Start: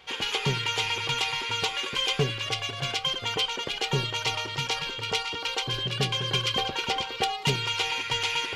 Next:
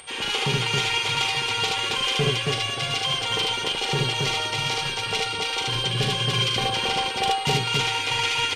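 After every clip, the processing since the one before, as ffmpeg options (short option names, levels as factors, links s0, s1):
-af "aeval=exprs='val(0)+0.00282*sin(2*PI*8600*n/s)':c=same,aecho=1:1:40.82|75.8|274.1:0.501|0.891|0.794,acompressor=mode=upward:threshold=0.00891:ratio=2.5"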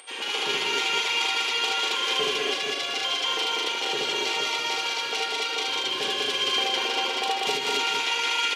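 -filter_complex "[0:a]highpass=f=280:w=0.5412,highpass=f=280:w=1.3066,asplit=2[s0][s1];[s1]aecho=0:1:157.4|195.3:0.447|0.794[s2];[s0][s2]amix=inputs=2:normalize=0,volume=0.668"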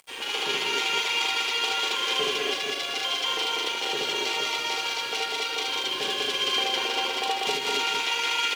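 -af "aeval=exprs='sgn(val(0))*max(abs(val(0))-0.00596,0)':c=same"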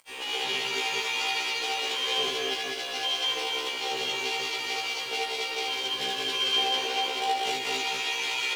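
-af "afftfilt=real='re*1.73*eq(mod(b,3),0)':imag='im*1.73*eq(mod(b,3),0)':win_size=2048:overlap=0.75"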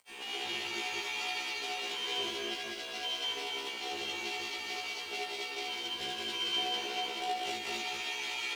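-af "afreqshift=-42,volume=0.422"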